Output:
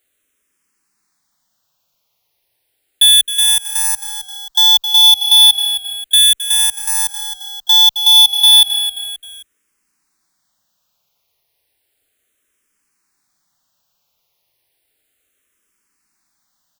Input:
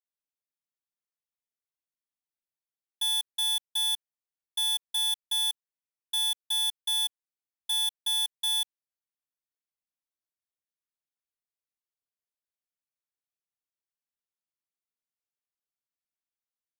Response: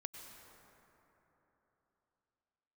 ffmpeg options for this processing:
-filter_complex "[0:a]asplit=2[a][b];[b]asplit=3[c][d][e];[c]adelay=265,afreqshift=-36,volume=-19dB[f];[d]adelay=530,afreqshift=-72,volume=-26.3dB[g];[e]adelay=795,afreqshift=-108,volume=-33.7dB[h];[f][g][h]amix=inputs=3:normalize=0[i];[a][i]amix=inputs=2:normalize=0,alimiter=level_in=33.5dB:limit=-1dB:release=50:level=0:latency=1,asplit=2[j][k];[k]afreqshift=-0.33[l];[j][l]amix=inputs=2:normalize=1,volume=-4dB"

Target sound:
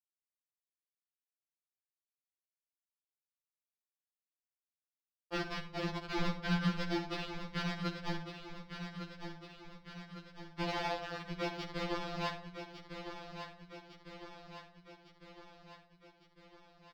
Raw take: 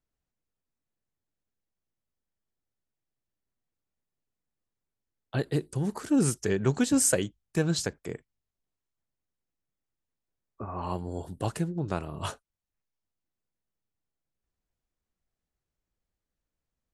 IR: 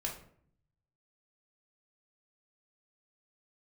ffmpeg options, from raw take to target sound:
-filter_complex "[0:a]lowpass=f=3.8k:p=1,aemphasis=mode=reproduction:type=75fm,agate=range=-33dB:threshold=-48dB:ratio=3:detection=peak,equalizer=f=240:t=o:w=0.98:g=-11.5,acompressor=threshold=-44dB:ratio=4,aresample=11025,acrusher=bits=6:mix=0:aa=0.000001,aresample=44100,aeval=exprs='sgn(val(0))*max(abs(val(0))-0.001,0)':c=same,afreqshift=-210,aecho=1:1:1155|2310|3465|4620|5775|6930|8085:0.355|0.202|0.115|0.0657|0.0375|0.0213|0.0122,asplit=2[a][b];[1:a]atrim=start_sample=2205,adelay=56[c];[b][c]afir=irnorm=-1:irlink=0,volume=-10.5dB[d];[a][d]amix=inputs=2:normalize=0,afftfilt=real='re*2.83*eq(mod(b,8),0)':imag='im*2.83*eq(mod(b,8),0)':win_size=2048:overlap=0.75,volume=11.5dB"

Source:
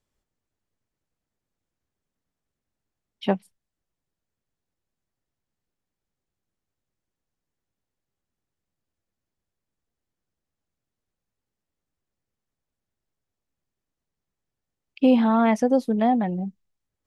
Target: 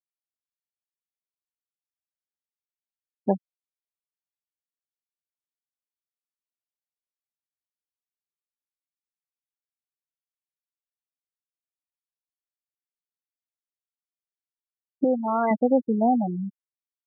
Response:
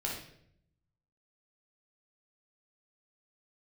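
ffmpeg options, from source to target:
-filter_complex "[0:a]asettb=1/sr,asplit=3[a][b][c];[a]atrim=end=15.044[d];[b]atrim=start=15.04:end=15.51,asetpts=PTS-STARTPTS,afade=t=in:d=0.004:c=qsin,afade=t=out:st=0.466:d=0.004:c=qsin,equalizer=f=230:t=o:w=1.1:g=-9.5[e];[c]atrim=start=15.506[f];[d][e]acrossfade=d=0.004:c1=hsin:c2=qsin[g];[g][f]acrossfade=d=0.004:c1=qsin:c2=hsin,afftfilt=real='re*gte(hypot(re,im),0.158)':imag='im*gte(hypot(re,im),0.158)':win_size=1024:overlap=0.75,highpass=140"

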